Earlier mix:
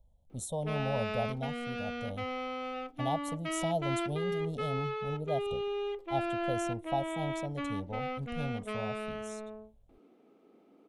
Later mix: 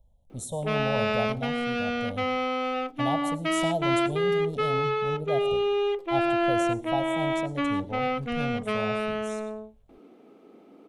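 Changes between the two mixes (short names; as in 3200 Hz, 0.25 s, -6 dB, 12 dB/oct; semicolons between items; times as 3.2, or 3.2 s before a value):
background +9.5 dB; reverb: on, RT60 0.45 s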